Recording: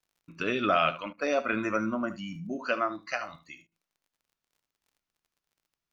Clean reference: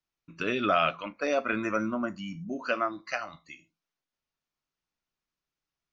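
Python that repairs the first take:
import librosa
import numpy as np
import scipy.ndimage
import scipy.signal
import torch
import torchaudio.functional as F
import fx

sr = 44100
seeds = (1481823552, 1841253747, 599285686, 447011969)

y = fx.fix_declick_ar(x, sr, threshold=6.5)
y = fx.fix_interpolate(y, sr, at_s=(1.13, 3.67), length_ms=46.0)
y = fx.fix_echo_inverse(y, sr, delay_ms=73, level_db=-15.0)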